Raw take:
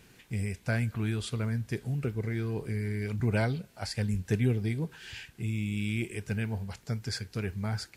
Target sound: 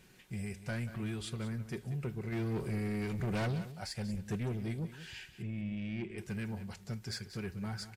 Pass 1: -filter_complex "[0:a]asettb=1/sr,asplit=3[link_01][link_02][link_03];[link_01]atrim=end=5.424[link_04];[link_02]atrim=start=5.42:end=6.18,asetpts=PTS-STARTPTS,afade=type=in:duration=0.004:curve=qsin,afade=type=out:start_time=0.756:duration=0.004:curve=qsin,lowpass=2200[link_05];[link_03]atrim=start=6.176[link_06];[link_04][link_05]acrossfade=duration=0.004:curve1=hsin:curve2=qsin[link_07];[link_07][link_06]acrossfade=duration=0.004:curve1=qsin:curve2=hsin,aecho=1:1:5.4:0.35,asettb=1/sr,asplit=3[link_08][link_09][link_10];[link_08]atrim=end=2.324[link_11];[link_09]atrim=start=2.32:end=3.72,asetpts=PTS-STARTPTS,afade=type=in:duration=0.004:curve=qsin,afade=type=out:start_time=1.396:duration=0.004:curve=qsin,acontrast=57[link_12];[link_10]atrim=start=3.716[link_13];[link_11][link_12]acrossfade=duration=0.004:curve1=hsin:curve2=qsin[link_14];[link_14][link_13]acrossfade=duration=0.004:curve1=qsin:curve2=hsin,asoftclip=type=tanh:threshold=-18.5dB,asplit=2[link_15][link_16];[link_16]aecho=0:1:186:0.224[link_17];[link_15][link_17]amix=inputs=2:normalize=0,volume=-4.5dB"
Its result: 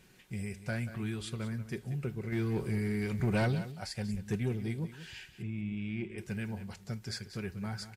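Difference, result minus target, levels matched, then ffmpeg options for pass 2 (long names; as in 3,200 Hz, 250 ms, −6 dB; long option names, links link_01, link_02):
soft clipping: distortion −7 dB
-filter_complex "[0:a]asettb=1/sr,asplit=3[link_01][link_02][link_03];[link_01]atrim=end=5.424[link_04];[link_02]atrim=start=5.42:end=6.18,asetpts=PTS-STARTPTS,afade=type=in:duration=0.004:curve=qsin,afade=type=out:start_time=0.756:duration=0.004:curve=qsin,lowpass=2200[link_05];[link_03]atrim=start=6.176[link_06];[link_04][link_05]acrossfade=duration=0.004:curve1=hsin:curve2=qsin[link_07];[link_07][link_06]acrossfade=duration=0.004:curve1=qsin:curve2=hsin,aecho=1:1:5.4:0.35,asettb=1/sr,asplit=3[link_08][link_09][link_10];[link_08]atrim=end=2.324[link_11];[link_09]atrim=start=2.32:end=3.72,asetpts=PTS-STARTPTS,afade=type=in:duration=0.004:curve=qsin,afade=type=out:start_time=1.396:duration=0.004:curve=qsin,acontrast=57[link_12];[link_10]atrim=start=3.716[link_13];[link_11][link_12]acrossfade=duration=0.004:curve1=hsin:curve2=qsin[link_14];[link_14][link_13]acrossfade=duration=0.004:curve1=qsin:curve2=hsin,asoftclip=type=tanh:threshold=-26.5dB,asplit=2[link_15][link_16];[link_16]aecho=0:1:186:0.224[link_17];[link_15][link_17]amix=inputs=2:normalize=0,volume=-4.5dB"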